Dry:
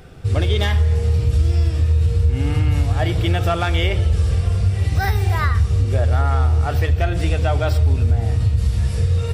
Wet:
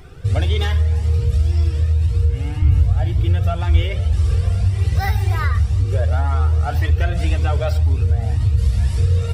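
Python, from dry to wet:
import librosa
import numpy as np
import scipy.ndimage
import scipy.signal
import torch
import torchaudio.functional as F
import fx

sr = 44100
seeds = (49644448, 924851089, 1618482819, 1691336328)

y = fx.low_shelf(x, sr, hz=180.0, db=12.0, at=(2.62, 3.82))
y = fx.rider(y, sr, range_db=5, speed_s=0.5)
y = fx.comb_cascade(y, sr, direction='rising', hz=1.9)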